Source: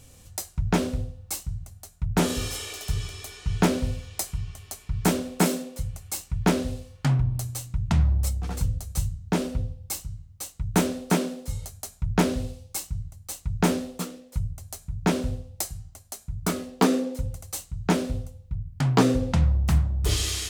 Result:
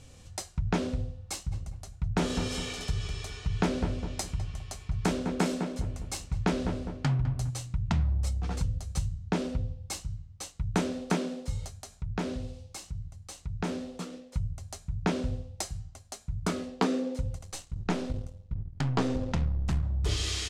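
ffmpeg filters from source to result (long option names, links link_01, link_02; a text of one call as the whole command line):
ffmpeg -i in.wav -filter_complex "[0:a]asplit=3[link_01][link_02][link_03];[link_01]afade=type=out:start_time=1.51:duration=0.02[link_04];[link_02]asplit=2[link_05][link_06];[link_06]adelay=204,lowpass=frequency=1600:poles=1,volume=-8.5dB,asplit=2[link_07][link_08];[link_08]adelay=204,lowpass=frequency=1600:poles=1,volume=0.34,asplit=2[link_09][link_10];[link_10]adelay=204,lowpass=frequency=1600:poles=1,volume=0.34,asplit=2[link_11][link_12];[link_12]adelay=204,lowpass=frequency=1600:poles=1,volume=0.34[link_13];[link_05][link_07][link_09][link_11][link_13]amix=inputs=5:normalize=0,afade=type=in:start_time=1.51:duration=0.02,afade=type=out:start_time=7.49:duration=0.02[link_14];[link_03]afade=type=in:start_time=7.49:duration=0.02[link_15];[link_04][link_14][link_15]amix=inputs=3:normalize=0,asettb=1/sr,asplit=3[link_16][link_17][link_18];[link_16]atrim=end=11.814[link_19];[link_17]atrim=start=11.81:end=14.13,asetpts=PTS-STARTPTS,afade=type=in:duration=0.004:curve=qsin,afade=type=out:start_time=2.316:duration=0.004:curve=qsin,acompressor=threshold=-42dB:ratio=1.5:attack=3.2:release=140:knee=1:detection=peak[link_20];[link_18]atrim=start=14.126[link_21];[link_19][link_20]acrossfade=duration=0.004:curve1=hsin:curve2=qsin[link_22];[link_22][link_21]acrossfade=duration=0.004:curve1=qsin:curve2=hsin,asettb=1/sr,asplit=3[link_23][link_24][link_25];[link_23]atrim=end=17.384[link_26];[link_24]atrim=start=17.38:end=19.83,asetpts=PTS-STARTPTS,afade=type=in:duration=0.004:curve=qsin,afade=type=out:start_time=2.446:duration=0.004:curve=qsin,aeval=exprs='if(lt(val(0),0),0.447*val(0),val(0))':channel_layout=same[link_27];[link_25]atrim=start=19.826[link_28];[link_26][link_27]acrossfade=duration=0.004:curve1=hsin:curve2=qsin[link_29];[link_29][link_28]acrossfade=duration=0.004:curve1=qsin:curve2=hsin,lowpass=6400,acompressor=threshold=-28dB:ratio=2" out.wav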